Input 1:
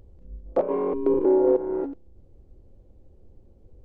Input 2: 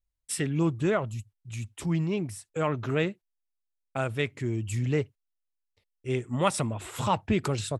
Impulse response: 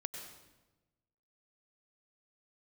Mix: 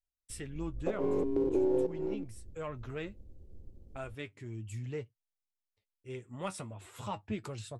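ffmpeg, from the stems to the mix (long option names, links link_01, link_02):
-filter_complex "[0:a]aeval=exprs='if(lt(val(0),0),0.708*val(0),val(0))':channel_layout=same,equalizer=frequency=1100:width=0.47:gain=-12,adelay=300,volume=2dB[link_01];[1:a]acontrast=73,flanger=delay=8.3:depth=2.4:regen=47:speed=0.38:shape=triangular,volume=-15.5dB,asplit=2[link_02][link_03];[link_03]apad=whole_len=182811[link_04];[link_01][link_04]sidechaincompress=threshold=-40dB:ratio=8:attack=16:release=110[link_05];[link_05][link_02]amix=inputs=2:normalize=0,alimiter=limit=-19.5dB:level=0:latency=1:release=494"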